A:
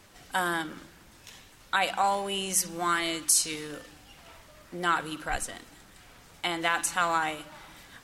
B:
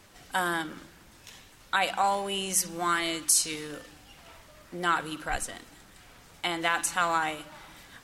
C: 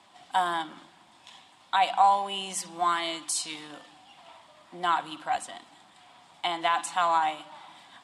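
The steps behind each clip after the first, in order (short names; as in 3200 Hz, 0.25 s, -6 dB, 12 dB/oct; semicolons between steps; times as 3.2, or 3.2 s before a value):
nothing audible
speaker cabinet 190–9000 Hz, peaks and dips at 460 Hz -10 dB, 740 Hz +10 dB, 1000 Hz +9 dB, 1500 Hz -3 dB, 3400 Hz +7 dB, 6100 Hz -7 dB; gain -3.5 dB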